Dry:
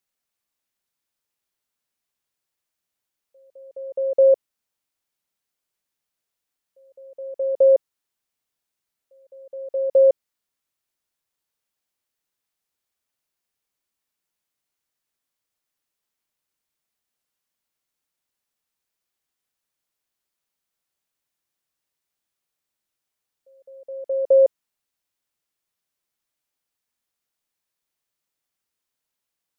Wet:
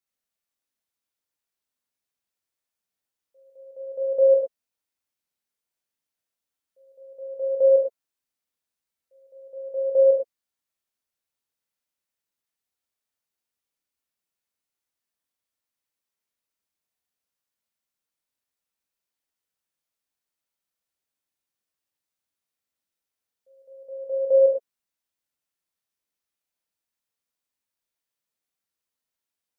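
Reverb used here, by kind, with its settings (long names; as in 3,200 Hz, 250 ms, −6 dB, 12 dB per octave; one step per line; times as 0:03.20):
reverb whose tail is shaped and stops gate 140 ms flat, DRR −1 dB
level −8 dB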